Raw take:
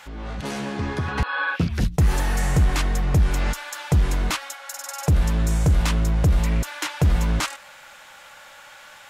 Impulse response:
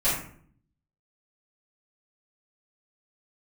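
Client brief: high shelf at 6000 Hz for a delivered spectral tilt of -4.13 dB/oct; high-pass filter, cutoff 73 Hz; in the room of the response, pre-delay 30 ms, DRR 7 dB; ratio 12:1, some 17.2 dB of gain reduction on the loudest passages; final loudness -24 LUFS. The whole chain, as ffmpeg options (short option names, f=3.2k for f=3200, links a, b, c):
-filter_complex "[0:a]highpass=73,highshelf=f=6k:g=9,acompressor=threshold=-32dB:ratio=12,asplit=2[a][b];[1:a]atrim=start_sample=2205,adelay=30[c];[b][c]afir=irnorm=-1:irlink=0,volume=-19.5dB[d];[a][d]amix=inputs=2:normalize=0,volume=11.5dB"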